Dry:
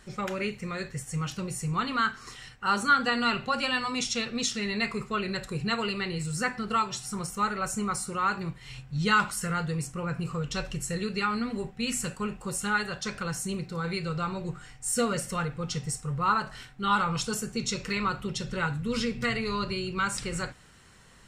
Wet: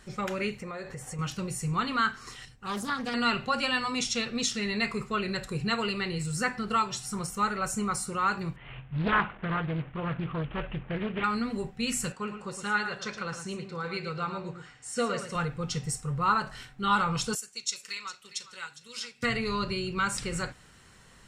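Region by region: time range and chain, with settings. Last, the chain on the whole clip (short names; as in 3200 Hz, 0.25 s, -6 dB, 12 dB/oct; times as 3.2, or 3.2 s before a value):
0.62–1.19 bell 710 Hz +13 dB 2 oct + compressor 5:1, threshold -36 dBFS
2.45–3.14 bell 1600 Hz -11 dB 3 oct + Doppler distortion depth 0.38 ms
8.56–11.24 CVSD 16 kbps + Doppler distortion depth 0.41 ms
12.12–15.35 HPF 290 Hz 6 dB/oct + air absorption 86 m + echo 0.111 s -9 dB
17.35–19.23 transient shaper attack +4 dB, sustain -4 dB + band-pass 7800 Hz, Q 0.61 + echo 0.407 s -15 dB
whole clip: dry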